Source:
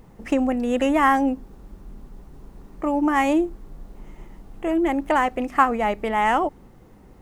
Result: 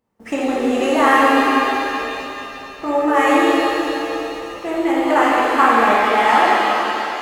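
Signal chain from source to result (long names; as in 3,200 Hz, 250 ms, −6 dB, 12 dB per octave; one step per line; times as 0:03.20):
noise gate −40 dBFS, range −22 dB
high-pass filter 350 Hz 6 dB per octave
reverb with rising layers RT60 3.1 s, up +7 semitones, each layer −8 dB, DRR −7.5 dB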